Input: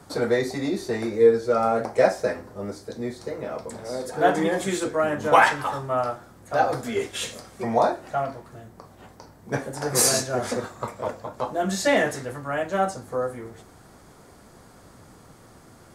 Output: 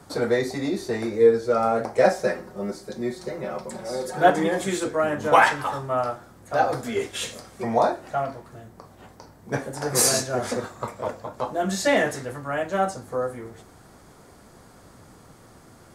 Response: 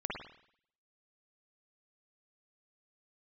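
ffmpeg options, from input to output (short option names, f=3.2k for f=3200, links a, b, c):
-filter_complex "[0:a]asettb=1/sr,asplit=3[a][b][c];[a]atrim=end=2.044[d];[b]atrim=start=2.04:end=4.3,asetpts=PTS-STARTPTS,afade=t=in:d=0.004:c=qsin,afade=t=out:st=2.256:d=0.004:c=qsin,aecho=1:1:5.4:0.79,atrim=end_sample=99666[e];[c]atrim=start=4.296[f];[d][e]acrossfade=d=0.004:c1=hsin:c2=qsin[g];[g][f]acrossfade=d=0.004:c1=qsin:c2=hsin"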